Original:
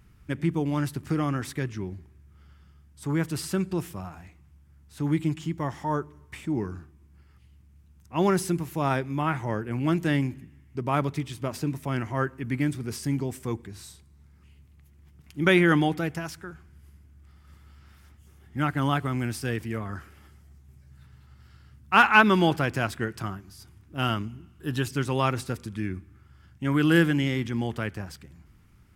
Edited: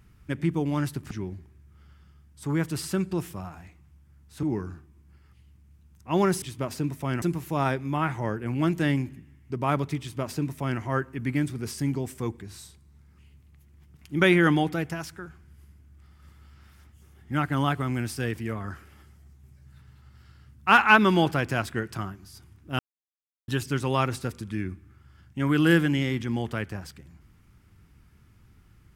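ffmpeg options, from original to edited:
ffmpeg -i in.wav -filter_complex "[0:a]asplit=7[link_01][link_02][link_03][link_04][link_05][link_06][link_07];[link_01]atrim=end=1.112[link_08];[link_02]atrim=start=1.708:end=5.032[link_09];[link_03]atrim=start=6.478:end=8.472[link_10];[link_04]atrim=start=11.248:end=12.052[link_11];[link_05]atrim=start=8.468:end=24.04,asetpts=PTS-STARTPTS,afade=type=out:start_time=15.568:duration=0.004:curve=hsin[link_12];[link_06]atrim=start=24.04:end=24.73,asetpts=PTS-STARTPTS,volume=0[link_13];[link_07]atrim=start=24.73,asetpts=PTS-STARTPTS,afade=type=in:duration=0.004:curve=hsin[link_14];[link_08][link_09]acrossfade=duration=0.004:curve1=hsin:curve2=hsin[link_15];[link_15][link_10]acrossfade=duration=0.004:curve1=hsin:curve2=hsin[link_16];[link_16][link_11]acrossfade=duration=0.004:curve1=hsin:curve2=hsin[link_17];[link_12][link_13][link_14]concat=n=3:v=0:a=1[link_18];[link_17][link_18]acrossfade=duration=0.004:curve1=hsin:curve2=hsin" out.wav

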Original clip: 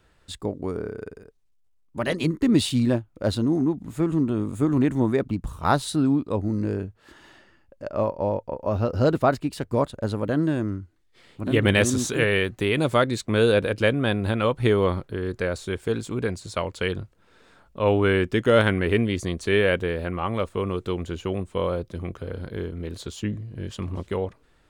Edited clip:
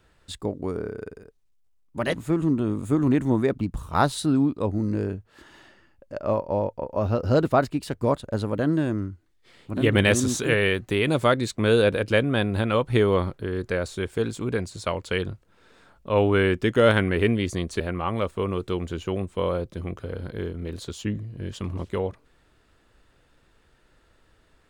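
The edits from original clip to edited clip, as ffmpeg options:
ffmpeg -i in.wav -filter_complex "[0:a]asplit=3[link_01][link_02][link_03];[link_01]atrim=end=2.142[link_04];[link_02]atrim=start=3.838:end=19.502[link_05];[link_03]atrim=start=19.978[link_06];[link_04][link_05]acrossfade=duration=0.004:curve1=hsin:curve2=hsin[link_07];[link_07][link_06]acrossfade=duration=0.004:curve1=hsin:curve2=hsin" out.wav

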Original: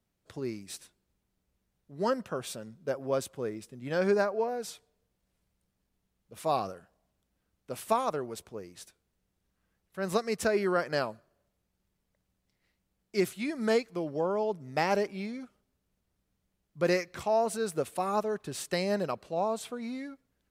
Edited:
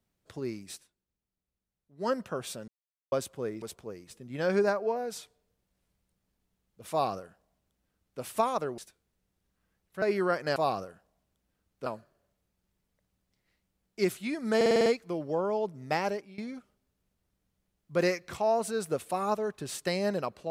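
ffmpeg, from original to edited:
ffmpeg -i in.wav -filter_complex "[0:a]asplit=18[link_01][link_02][link_03][link_04][link_05][link_06][link_07][link_08][link_09][link_10][link_11][link_12][link_13][link_14][link_15][link_16][link_17][link_18];[link_01]atrim=end=0.84,asetpts=PTS-STARTPTS,afade=type=out:start_time=0.7:duration=0.14:silence=0.266073[link_19];[link_02]atrim=start=0.84:end=1.97,asetpts=PTS-STARTPTS,volume=-11.5dB[link_20];[link_03]atrim=start=1.97:end=2.68,asetpts=PTS-STARTPTS,afade=type=in:duration=0.14:silence=0.266073,afade=type=out:start_time=0.706:duration=0.004:curve=hsin[link_21];[link_04]atrim=start=2.68:end=3.12,asetpts=PTS-STARTPTS,volume=0[link_22];[link_05]atrim=start=3.12:end=3.622,asetpts=PTS-STARTPTS,afade=type=in:duration=0.004:curve=hsin[link_23];[link_06]atrim=start=8.298:end=8.782[link_24];[link_07]atrim=start=3.618:end=8.302[link_25];[link_08]atrim=start=8.778:end=10.022[link_26];[link_09]atrim=start=10.478:end=11.022[link_27];[link_10]atrim=start=6.428:end=7.732[link_28];[link_11]atrim=start=11.018:end=13.772[link_29];[link_12]atrim=start=13.718:end=13.772[link_30];[link_13]atrim=start=13.718:end=13.772[link_31];[link_14]atrim=start=13.718:end=13.772[link_32];[link_15]atrim=start=13.718:end=13.772[link_33];[link_16]atrim=start=13.718:end=13.772[link_34];[link_17]atrim=start=13.718:end=15.24,asetpts=PTS-STARTPTS,afade=type=out:start_time=1.022:duration=0.5:silence=0.141254[link_35];[link_18]atrim=start=15.24,asetpts=PTS-STARTPTS,afade=type=in:duration=0.004:curve=hsin:silence=0.141254[link_36];[link_19][link_20][link_21][link_22][link_23]concat=n=5:v=0:a=1[link_37];[link_37][link_24]acrossfade=duration=0.004:curve1=hsin:curve2=hsin[link_38];[link_38][link_25]acrossfade=duration=0.004:curve1=hsin:curve2=hsin[link_39];[link_39][link_26]acrossfade=duration=0.004:curve1=hsin:curve2=hsin[link_40];[link_40][link_27]acrossfade=duration=0.004:curve1=hsin:curve2=hsin[link_41];[link_41][link_28]acrossfade=duration=0.004:curve1=hsin:curve2=hsin[link_42];[link_42][link_29]acrossfade=duration=0.004:curve1=hsin:curve2=hsin[link_43];[link_43][link_30]acrossfade=duration=0.004:curve1=hsin:curve2=hsin[link_44];[link_44][link_31]acrossfade=duration=0.004:curve1=hsin:curve2=hsin[link_45];[link_45][link_32]acrossfade=duration=0.004:curve1=hsin:curve2=hsin[link_46];[link_46][link_33]acrossfade=duration=0.004:curve1=hsin:curve2=hsin[link_47];[link_47][link_34]acrossfade=duration=0.004:curve1=hsin:curve2=hsin[link_48];[link_35][link_36]concat=n=2:v=0:a=1[link_49];[link_48][link_49]acrossfade=duration=0.004:curve1=hsin:curve2=hsin" out.wav

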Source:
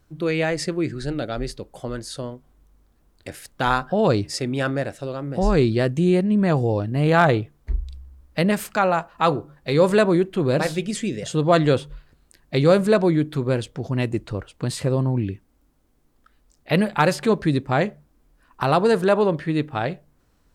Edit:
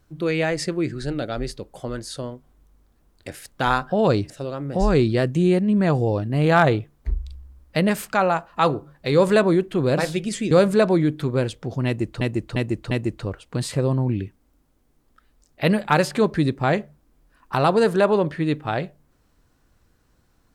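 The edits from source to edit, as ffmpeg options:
ffmpeg -i in.wav -filter_complex "[0:a]asplit=6[link_01][link_02][link_03][link_04][link_05][link_06];[link_01]atrim=end=4.302[link_07];[link_02]atrim=start=4.918:end=11.132[link_08];[link_03]atrim=start=12.638:end=14.342[link_09];[link_04]atrim=start=13.988:end=14.342[link_10];[link_05]atrim=start=13.988:end=14.342[link_11];[link_06]atrim=start=13.988[link_12];[link_07][link_08]acrossfade=duration=0.004:curve1=hsin:curve2=hsin[link_13];[link_13][link_09]acrossfade=duration=0.004:curve1=hsin:curve2=hsin[link_14];[link_14][link_10]acrossfade=duration=0.004:curve1=hsin:curve2=hsin[link_15];[link_15][link_11]acrossfade=duration=0.004:curve1=hsin:curve2=hsin[link_16];[link_16][link_12]acrossfade=duration=0.004:curve1=hsin:curve2=hsin" out.wav

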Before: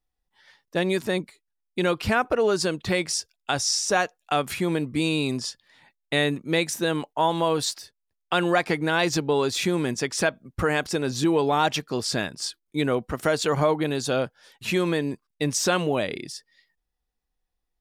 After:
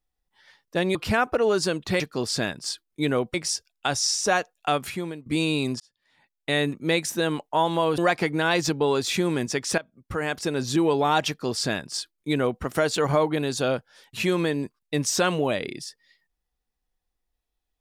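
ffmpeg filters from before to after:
ffmpeg -i in.wav -filter_complex "[0:a]asplit=8[link_01][link_02][link_03][link_04][link_05][link_06][link_07][link_08];[link_01]atrim=end=0.952[link_09];[link_02]atrim=start=1.928:end=2.982[link_10];[link_03]atrim=start=11.758:end=13.102[link_11];[link_04]atrim=start=2.978:end=4.9,asetpts=PTS-STARTPTS,afade=type=out:start_time=1.392:duration=0.53:silence=0.0891251[link_12];[link_05]atrim=start=4.9:end=5.44,asetpts=PTS-STARTPTS,afade=type=in:duration=0.004:curve=hsin:silence=0.0891251,afade=type=out:start_time=0.536:duration=0.004:curve=hsin[link_13];[link_06]atrim=start=5.44:end=7.622,asetpts=PTS-STARTPTS,afade=type=in:duration=0.87[link_14];[link_07]atrim=start=8.458:end=10.26,asetpts=PTS-STARTPTS,afade=type=out:start_time=1.798:duration=0.004:curve=hsin:silence=0.158489[link_15];[link_08]atrim=start=10.26,asetpts=PTS-STARTPTS,afade=type=in:duration=0.82:silence=0.158489[link_16];[link_09][link_10]acrossfade=duration=0.004:curve1=hsin:curve2=hsin[link_17];[link_17][link_11]acrossfade=duration=0.004:curve1=hsin:curve2=hsin[link_18];[link_12][link_13][link_14]concat=n=3:v=0:a=1[link_19];[link_18][link_19]acrossfade=duration=0.004:curve1=hsin:curve2=hsin[link_20];[link_15][link_16]concat=n=2:v=0:a=1[link_21];[link_20][link_21]acrossfade=duration=0.004:curve1=hsin:curve2=hsin" out.wav

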